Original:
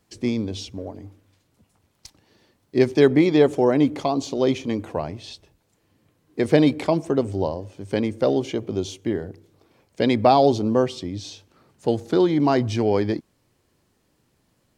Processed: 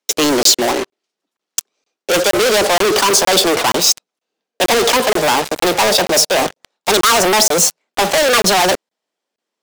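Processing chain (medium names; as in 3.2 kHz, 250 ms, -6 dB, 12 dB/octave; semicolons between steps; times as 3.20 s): gliding tape speed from 125% -> 182%; three-band isolator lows -18 dB, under 270 Hz, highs -17 dB, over 7 kHz; in parallel at -1 dB: peak limiter -13 dBFS, peak gain reduction 8.5 dB; on the sum: steep high-pass 160 Hz 72 dB/octave; waveshaping leveller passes 3; reverse; compression, threshold -16 dBFS, peak gain reduction 10.5 dB; reverse; waveshaping leveller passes 5; treble shelf 2.5 kHz +10 dB; crackling interface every 0.47 s, samples 1024, zero, from 0.43 s; trim -4 dB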